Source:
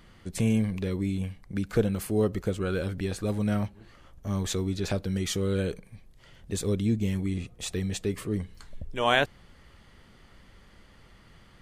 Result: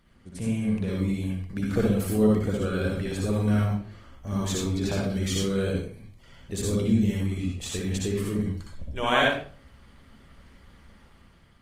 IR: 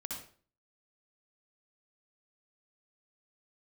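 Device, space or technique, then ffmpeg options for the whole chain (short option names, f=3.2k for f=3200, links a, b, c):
speakerphone in a meeting room: -filter_complex "[1:a]atrim=start_sample=2205[a];[0:a][a]afir=irnorm=-1:irlink=0,dynaudnorm=f=200:g=7:m=6.5dB,volume=-3.5dB" -ar 48000 -c:a libopus -b:a 24k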